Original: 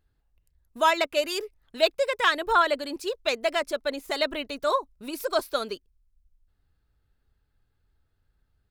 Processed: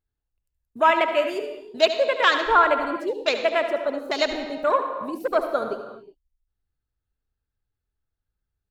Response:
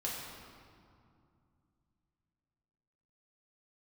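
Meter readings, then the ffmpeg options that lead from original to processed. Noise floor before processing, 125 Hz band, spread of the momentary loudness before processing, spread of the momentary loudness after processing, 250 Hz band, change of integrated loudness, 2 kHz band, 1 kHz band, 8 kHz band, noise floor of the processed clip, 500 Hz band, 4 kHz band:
-73 dBFS, n/a, 11 LU, 12 LU, +4.5 dB, +4.0 dB, +4.0 dB, +4.5 dB, -4.0 dB, -84 dBFS, +4.5 dB, +1.0 dB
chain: -filter_complex "[0:a]afwtdn=0.0251,asplit=2[a][b];[1:a]atrim=start_sample=2205,afade=t=out:st=0.37:d=0.01,atrim=end_sample=16758,adelay=72[c];[b][c]afir=irnorm=-1:irlink=0,volume=-9dB[d];[a][d]amix=inputs=2:normalize=0,volume=3.5dB"

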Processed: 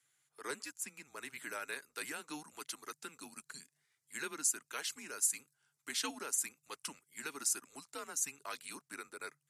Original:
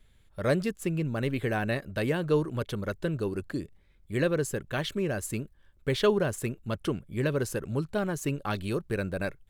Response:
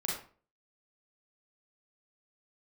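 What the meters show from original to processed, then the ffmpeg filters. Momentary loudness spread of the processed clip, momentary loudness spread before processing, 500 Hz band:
15 LU, 8 LU, -22.5 dB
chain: -filter_complex "[0:a]equalizer=f=3.5k:t=o:w=0.86:g=-12,acrossover=split=2700[a][b];[b]dynaudnorm=f=270:g=11:m=4.5dB[c];[a][c]amix=inputs=2:normalize=0,afreqshift=-150,lowpass=7.6k,acontrast=68,highpass=200,aderivative,volume=1dB" -ar 44100 -c:a libmp3lame -b:a 56k

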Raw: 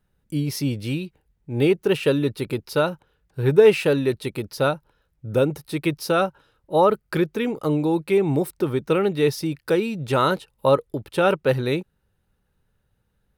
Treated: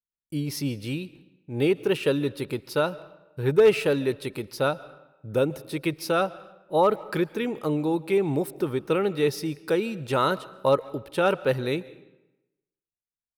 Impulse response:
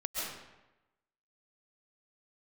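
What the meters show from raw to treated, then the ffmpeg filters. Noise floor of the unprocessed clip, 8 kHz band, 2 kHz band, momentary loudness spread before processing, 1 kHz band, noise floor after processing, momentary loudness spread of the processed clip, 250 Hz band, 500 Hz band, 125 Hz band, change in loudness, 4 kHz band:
-71 dBFS, -3.0 dB, -3.0 dB, 9 LU, -3.0 dB, under -85 dBFS, 10 LU, -4.0 dB, -3.5 dB, -5.5 dB, -3.5 dB, -3.0 dB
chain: -filter_complex "[0:a]agate=range=-33dB:threshold=-47dB:ratio=3:detection=peak,equalizer=f=66:w=0.42:g=-4,volume=8dB,asoftclip=hard,volume=-8dB,asplit=2[a][b];[b]adelay=140,highpass=300,lowpass=3.4k,asoftclip=type=hard:threshold=-16.5dB,volume=-28dB[c];[a][c]amix=inputs=2:normalize=0,asplit=2[d][e];[1:a]atrim=start_sample=2205[f];[e][f]afir=irnorm=-1:irlink=0,volume=-22dB[g];[d][g]amix=inputs=2:normalize=0,volume=-3.5dB"

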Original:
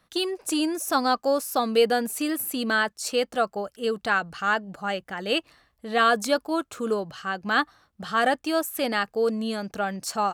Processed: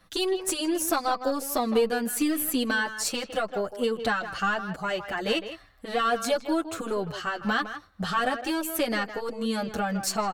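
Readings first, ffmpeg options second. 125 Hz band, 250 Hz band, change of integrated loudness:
+2.5 dB, -0.5 dB, -2.0 dB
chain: -filter_complex "[0:a]lowshelf=f=70:g=9.5,acompressor=threshold=-29dB:ratio=4,aeval=exprs='0.211*(cos(1*acos(clip(val(0)/0.211,-1,1)))-cos(1*PI/2))+0.0188*(cos(4*acos(clip(val(0)/0.211,-1,1)))-cos(4*PI/2))':c=same,asplit=2[a][b];[b]adelay=160,highpass=300,lowpass=3.4k,asoftclip=type=hard:threshold=-24dB,volume=-10dB[c];[a][c]amix=inputs=2:normalize=0,asplit=2[d][e];[e]adelay=7.2,afreqshift=-0.89[f];[d][f]amix=inputs=2:normalize=1,volume=7.5dB"

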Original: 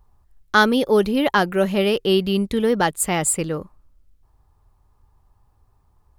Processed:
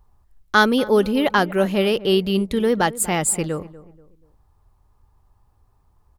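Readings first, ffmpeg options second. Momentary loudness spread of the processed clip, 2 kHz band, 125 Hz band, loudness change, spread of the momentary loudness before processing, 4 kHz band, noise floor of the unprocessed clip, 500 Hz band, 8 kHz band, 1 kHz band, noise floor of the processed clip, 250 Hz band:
5 LU, 0.0 dB, 0.0 dB, 0.0 dB, 5 LU, 0.0 dB, -61 dBFS, 0.0 dB, 0.0 dB, 0.0 dB, -61 dBFS, 0.0 dB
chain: -filter_complex "[0:a]asplit=2[a][b];[b]adelay=241,lowpass=f=1.2k:p=1,volume=-17dB,asplit=2[c][d];[d]adelay=241,lowpass=f=1.2k:p=1,volume=0.38,asplit=2[e][f];[f]adelay=241,lowpass=f=1.2k:p=1,volume=0.38[g];[a][c][e][g]amix=inputs=4:normalize=0"

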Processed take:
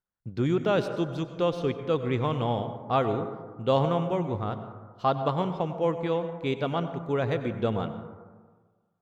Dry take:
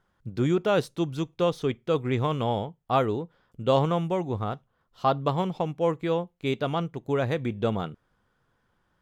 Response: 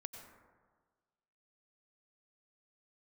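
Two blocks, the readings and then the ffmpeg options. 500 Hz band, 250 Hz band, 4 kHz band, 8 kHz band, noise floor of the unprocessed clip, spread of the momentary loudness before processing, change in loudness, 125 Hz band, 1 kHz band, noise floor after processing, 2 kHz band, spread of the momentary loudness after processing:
-0.5 dB, -1.0 dB, -2.0 dB, n/a, -73 dBFS, 8 LU, -1.0 dB, -1.0 dB, -1.0 dB, -73 dBFS, -1.0 dB, 8 LU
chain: -filter_complex "[0:a]agate=range=-22dB:threshold=-53dB:ratio=16:detection=peak,asplit=2[a][b];[1:a]atrim=start_sample=2205,lowpass=6.7k[c];[b][c]afir=irnorm=-1:irlink=0,volume=8dB[d];[a][d]amix=inputs=2:normalize=0,volume=-9dB"

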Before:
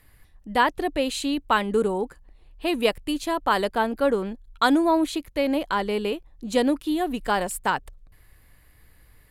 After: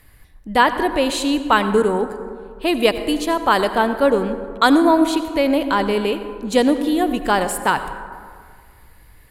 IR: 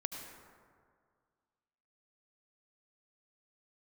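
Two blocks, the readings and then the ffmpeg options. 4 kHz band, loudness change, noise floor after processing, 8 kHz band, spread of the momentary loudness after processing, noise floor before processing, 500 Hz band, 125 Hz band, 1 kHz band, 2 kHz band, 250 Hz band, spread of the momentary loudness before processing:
+6.0 dB, +6.5 dB, -48 dBFS, +6.0 dB, 10 LU, -56 dBFS, +6.5 dB, n/a, +6.5 dB, +6.5 dB, +6.5 dB, 7 LU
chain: -filter_complex "[0:a]asplit=2[a][b];[1:a]atrim=start_sample=2205[c];[b][c]afir=irnorm=-1:irlink=0,volume=-1dB[d];[a][d]amix=inputs=2:normalize=0,volume=1dB"

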